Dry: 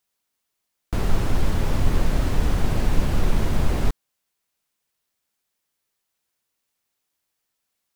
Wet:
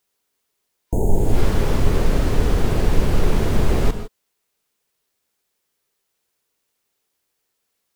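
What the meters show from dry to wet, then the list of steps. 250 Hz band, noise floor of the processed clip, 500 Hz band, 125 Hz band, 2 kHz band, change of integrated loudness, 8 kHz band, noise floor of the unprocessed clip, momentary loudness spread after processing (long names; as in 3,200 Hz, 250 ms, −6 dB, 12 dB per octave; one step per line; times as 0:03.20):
+4.0 dB, −75 dBFS, +7.5 dB, +3.0 dB, +2.5 dB, +3.5 dB, +3.0 dB, −79 dBFS, 4 LU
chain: reverb whose tail is shaped and stops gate 180 ms rising, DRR 10 dB
speech leveller
healed spectral selection 0:00.86–0:01.39, 950–6,300 Hz both
parametric band 420 Hz +7 dB 0.55 octaves
level +3 dB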